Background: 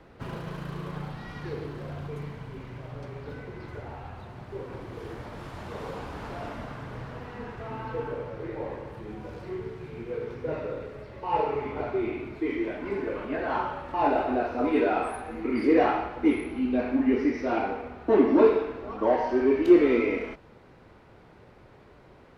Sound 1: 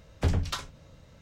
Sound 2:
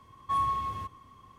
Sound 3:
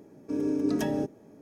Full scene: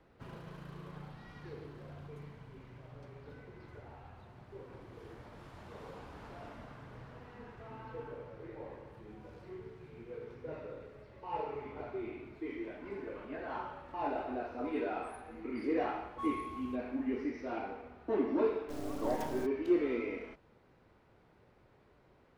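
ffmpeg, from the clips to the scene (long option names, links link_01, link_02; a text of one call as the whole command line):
ffmpeg -i bed.wav -i cue0.wav -i cue1.wav -i cue2.wav -filter_complex "[0:a]volume=-12dB[link_01];[3:a]acrusher=bits=4:dc=4:mix=0:aa=0.000001[link_02];[2:a]atrim=end=1.38,asetpts=PTS-STARTPTS,volume=-13dB,afade=type=in:duration=0.004:curve=hsin,afade=type=out:start_time=1.376:duration=0.004:curve=hsin,adelay=15890[link_03];[link_02]atrim=end=1.41,asetpts=PTS-STARTPTS,volume=-8.5dB,afade=type=in:duration=0.004:curve=hsin,afade=type=out:start_time=1.406:duration=0.004:curve=hsin,adelay=18400[link_04];[link_01][link_03][link_04]amix=inputs=3:normalize=0" out.wav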